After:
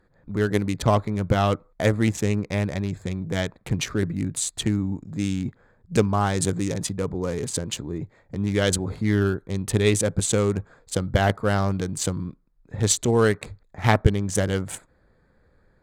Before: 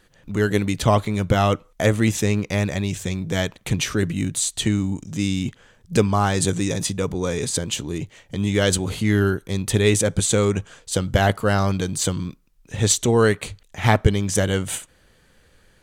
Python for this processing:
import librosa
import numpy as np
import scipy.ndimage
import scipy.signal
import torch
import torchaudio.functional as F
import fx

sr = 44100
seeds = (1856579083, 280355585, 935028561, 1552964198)

y = fx.wiener(x, sr, points=15)
y = fx.cheby_harmonics(y, sr, harmonics=(3,), levels_db=(-21,), full_scale_db=-2.5)